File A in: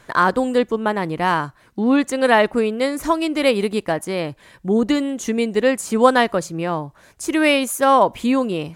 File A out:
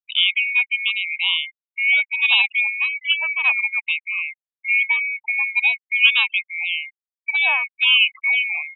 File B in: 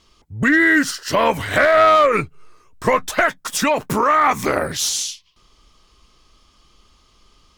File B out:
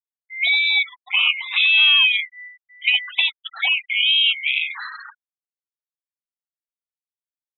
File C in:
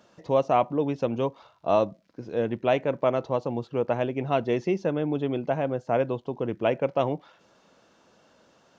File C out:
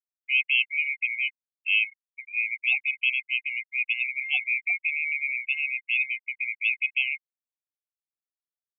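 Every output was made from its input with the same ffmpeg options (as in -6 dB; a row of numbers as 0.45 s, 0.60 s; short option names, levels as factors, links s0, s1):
-af "afftfilt=real='real(if(lt(b,920),b+92*(1-2*mod(floor(b/92),2)),b),0)':imag='imag(if(lt(b,920),b+92*(1-2*mod(floor(b/92),2)),b),0)':win_size=2048:overlap=0.75,asuperpass=centerf=1600:order=12:qfactor=0.55,afftfilt=real='re*gte(hypot(re,im),0.0708)':imag='im*gte(hypot(re,im),0.0708)':win_size=1024:overlap=0.75,volume=0.841"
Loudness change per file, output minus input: +1.0 LU, +0.5 LU, +1.5 LU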